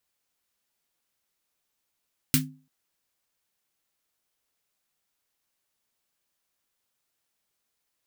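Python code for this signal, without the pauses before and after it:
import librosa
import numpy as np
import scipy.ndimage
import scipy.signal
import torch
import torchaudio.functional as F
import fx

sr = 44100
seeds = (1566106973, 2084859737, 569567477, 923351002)

y = fx.drum_snare(sr, seeds[0], length_s=0.34, hz=150.0, second_hz=260.0, noise_db=3, noise_from_hz=1400.0, decay_s=0.38, noise_decay_s=0.15)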